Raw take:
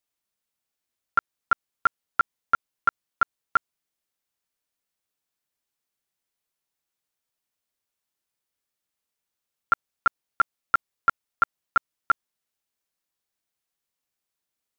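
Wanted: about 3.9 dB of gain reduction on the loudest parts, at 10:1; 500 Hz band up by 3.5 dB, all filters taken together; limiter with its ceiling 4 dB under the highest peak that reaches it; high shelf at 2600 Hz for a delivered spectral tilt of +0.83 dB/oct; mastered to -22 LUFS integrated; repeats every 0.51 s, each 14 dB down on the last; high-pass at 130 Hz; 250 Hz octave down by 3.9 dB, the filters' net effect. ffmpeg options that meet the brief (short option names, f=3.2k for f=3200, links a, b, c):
-af "highpass=130,equalizer=f=250:t=o:g=-7.5,equalizer=f=500:t=o:g=6,highshelf=f=2.6k:g=4,acompressor=threshold=-18dB:ratio=10,alimiter=limit=-13dB:level=0:latency=1,aecho=1:1:510|1020:0.2|0.0399,volume=10dB"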